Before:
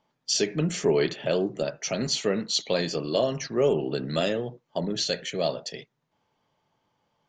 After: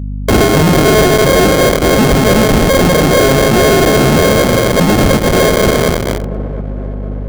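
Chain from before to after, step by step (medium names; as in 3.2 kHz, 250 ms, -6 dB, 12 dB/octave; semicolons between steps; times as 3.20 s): backward echo that repeats 118 ms, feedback 63%, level -7 dB; high-pass 51 Hz 12 dB/octave; hum notches 60/120/180/240/300/360/420/480 Hz; in parallel at +2.5 dB: compression, threshold -35 dBFS, peak gain reduction 16.5 dB; on the sum: fuzz box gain 33 dB, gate -39 dBFS; sample-and-hold 41×; hum 50 Hz, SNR 14 dB; on a send: feedback echo behind a low-pass 716 ms, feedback 55%, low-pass 950 Hz, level -19 dB; on the sum: loudness maximiser +14.5 dB; sliding maximum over 9 samples; trim -4 dB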